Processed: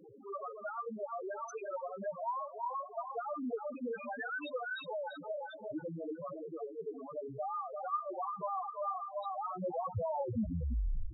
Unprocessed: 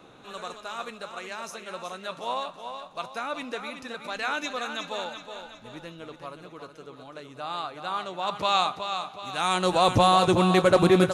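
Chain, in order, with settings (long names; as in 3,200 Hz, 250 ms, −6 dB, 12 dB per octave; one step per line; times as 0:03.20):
turntable brake at the end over 1.22 s
downward compressor 6 to 1, threshold −36 dBFS, peak gain reduction 19 dB
on a send: feedback echo with a high-pass in the loop 342 ms, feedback 39%, high-pass 150 Hz, level −4.5 dB
on the sum: steady tone 410 Hz −61 dBFS
spectral peaks only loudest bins 2
level +7 dB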